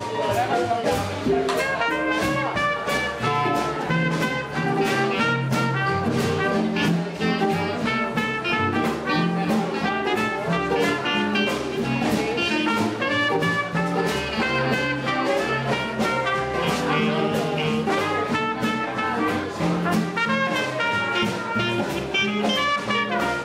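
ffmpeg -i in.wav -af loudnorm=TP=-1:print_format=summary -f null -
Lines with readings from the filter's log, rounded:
Input Integrated:    -22.6 LUFS
Input True Peak:     -11.6 dBTP
Input LRA:             0.8 LU
Input Threshold:     -32.6 LUFS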